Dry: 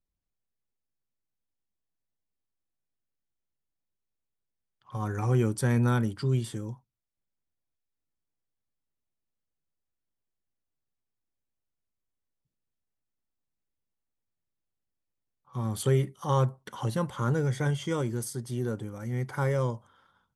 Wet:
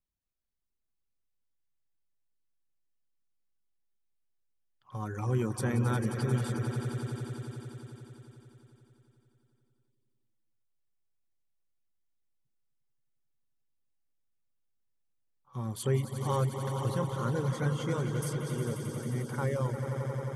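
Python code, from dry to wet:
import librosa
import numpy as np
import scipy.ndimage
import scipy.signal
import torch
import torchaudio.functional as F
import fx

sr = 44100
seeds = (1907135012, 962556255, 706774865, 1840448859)

y = fx.echo_swell(x, sr, ms=89, loudest=5, wet_db=-10.0)
y = fx.dereverb_blind(y, sr, rt60_s=0.52)
y = y * librosa.db_to_amplitude(-4.0)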